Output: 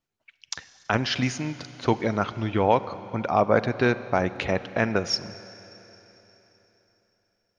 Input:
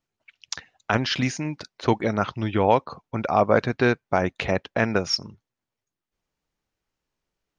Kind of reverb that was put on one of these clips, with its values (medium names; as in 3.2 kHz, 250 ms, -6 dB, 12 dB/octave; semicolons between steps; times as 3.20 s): Schroeder reverb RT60 3.8 s, combs from 32 ms, DRR 14 dB; trim -1.5 dB